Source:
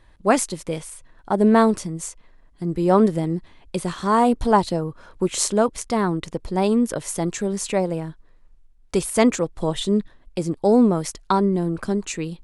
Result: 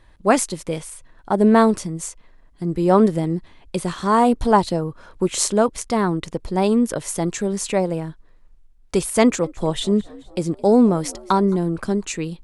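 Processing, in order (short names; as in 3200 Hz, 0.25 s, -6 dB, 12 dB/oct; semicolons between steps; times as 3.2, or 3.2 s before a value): 9.22–11.56 frequency-shifting echo 0.216 s, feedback 54%, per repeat +62 Hz, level -23 dB; gain +1.5 dB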